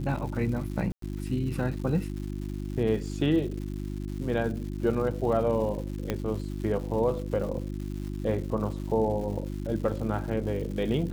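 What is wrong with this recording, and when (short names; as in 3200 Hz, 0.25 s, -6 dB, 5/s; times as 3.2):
crackle 300/s -38 dBFS
hum 50 Hz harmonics 7 -34 dBFS
0.92–1.02 gap 0.103 s
6.1 pop -14 dBFS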